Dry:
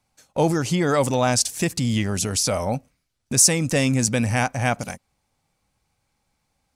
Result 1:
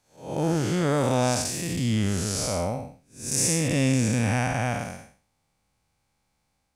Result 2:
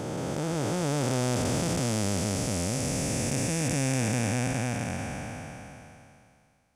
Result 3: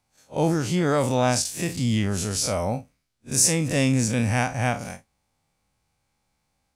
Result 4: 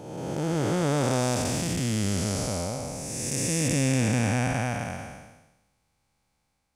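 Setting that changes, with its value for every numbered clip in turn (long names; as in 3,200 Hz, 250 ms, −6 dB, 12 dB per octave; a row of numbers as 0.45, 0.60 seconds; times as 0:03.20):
spectrum smeared in time, width: 236, 1,620, 81, 638 milliseconds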